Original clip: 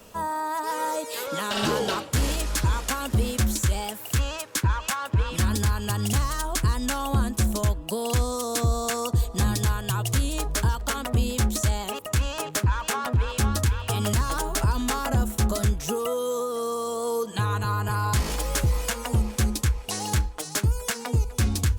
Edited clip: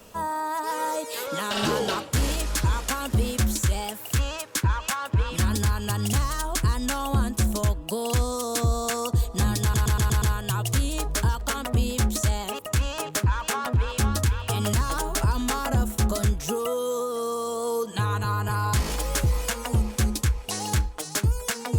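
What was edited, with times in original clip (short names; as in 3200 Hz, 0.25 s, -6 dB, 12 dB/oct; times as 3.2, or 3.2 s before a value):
9.62 stutter 0.12 s, 6 plays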